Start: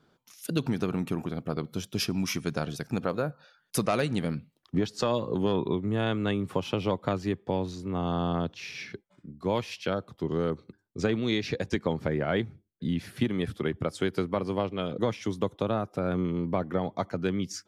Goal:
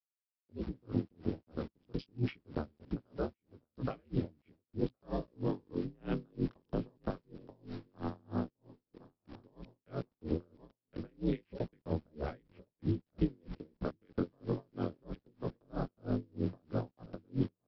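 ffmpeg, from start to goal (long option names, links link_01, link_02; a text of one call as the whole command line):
ffmpeg -i in.wav -filter_complex "[0:a]afwtdn=0.0178,equalizer=frequency=230:width_type=o:width=1.1:gain=2.5,aeval=exprs='val(0)*sin(2*PI*71*n/s)':channel_layout=same,alimiter=limit=-20.5dB:level=0:latency=1:release=35,flanger=delay=16:depth=7.3:speed=1.3,aresample=11025,aeval=exprs='val(0)*gte(abs(val(0)),0.00376)':channel_layout=same,aresample=44100,acrossover=split=440|3000[link_01][link_02][link_03];[link_02]acompressor=threshold=-42dB:ratio=6[link_04];[link_01][link_04][link_03]amix=inputs=3:normalize=0,asplit=2[link_05][link_06];[link_06]aecho=0:1:1066|2132|3198|4264:0.0708|0.0382|0.0206|0.0111[link_07];[link_05][link_07]amix=inputs=2:normalize=0,aeval=exprs='val(0)*pow(10,-37*(0.5-0.5*cos(2*PI*3.1*n/s))/20)':channel_layout=same,volume=4.5dB" out.wav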